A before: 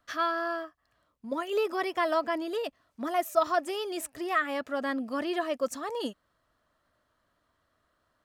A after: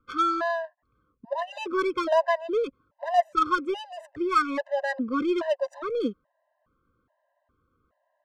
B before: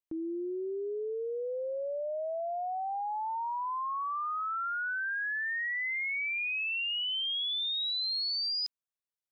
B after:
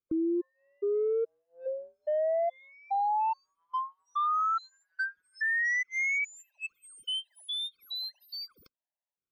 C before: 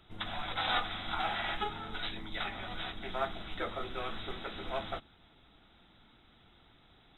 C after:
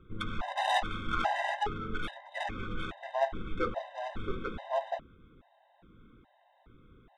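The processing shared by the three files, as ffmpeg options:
-af "adynamicsmooth=sensitivity=3:basefreq=1400,afftfilt=real='re*gt(sin(2*PI*1.2*pts/sr)*(1-2*mod(floor(b*sr/1024/520),2)),0)':imag='im*gt(sin(2*PI*1.2*pts/sr)*(1-2*mod(floor(b*sr/1024/520),2)),0)':win_size=1024:overlap=0.75,volume=7.5dB"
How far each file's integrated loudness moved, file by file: +4.0, +0.5, +2.0 LU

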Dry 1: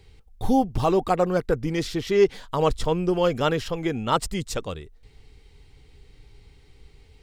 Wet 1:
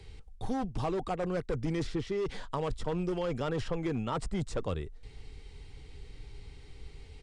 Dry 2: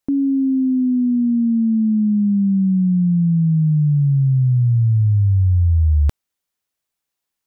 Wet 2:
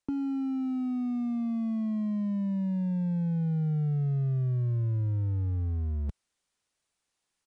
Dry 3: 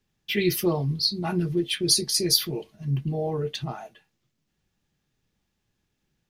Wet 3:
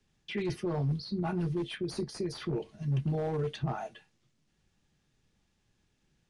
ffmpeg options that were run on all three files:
-filter_complex "[0:a]lowshelf=frequency=62:gain=2.5,areverse,acompressor=threshold=-26dB:ratio=8,areverse,asoftclip=type=hard:threshold=-25.5dB,acrossover=split=120|1900[link_01][link_02][link_03];[link_01]acompressor=threshold=-34dB:ratio=4[link_04];[link_02]acompressor=threshold=-32dB:ratio=4[link_05];[link_03]acompressor=threshold=-51dB:ratio=4[link_06];[link_04][link_05][link_06]amix=inputs=3:normalize=0,aresample=22050,aresample=44100,volume=2dB"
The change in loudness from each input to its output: −10.5, −13.5, −9.0 LU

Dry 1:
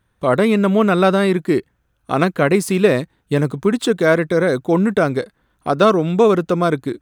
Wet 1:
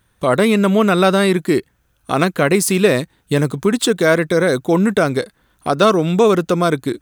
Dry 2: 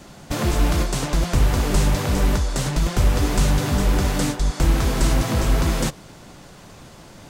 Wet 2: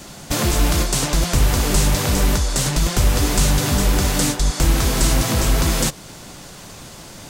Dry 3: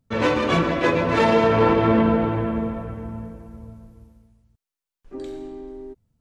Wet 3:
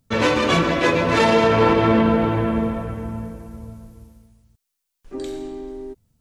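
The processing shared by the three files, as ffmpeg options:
-filter_complex "[0:a]highshelf=frequency=3400:gain=9,asplit=2[link_01][link_02];[link_02]alimiter=limit=-14.5dB:level=0:latency=1:release=300,volume=-1dB[link_03];[link_01][link_03]amix=inputs=2:normalize=0,volume=-2dB"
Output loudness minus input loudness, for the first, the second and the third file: +1.0, +3.0, +1.0 LU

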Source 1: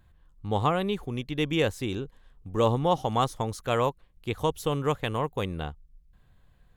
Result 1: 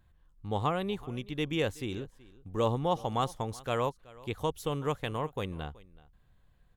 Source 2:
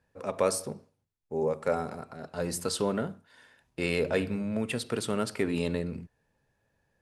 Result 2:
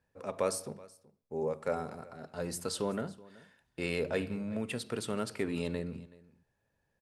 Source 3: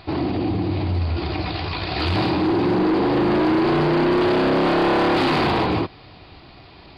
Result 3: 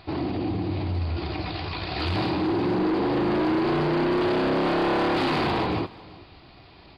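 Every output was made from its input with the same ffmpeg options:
-af "aecho=1:1:376:0.0841,volume=-5dB"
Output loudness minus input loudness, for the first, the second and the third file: −5.0, −5.0, −5.0 LU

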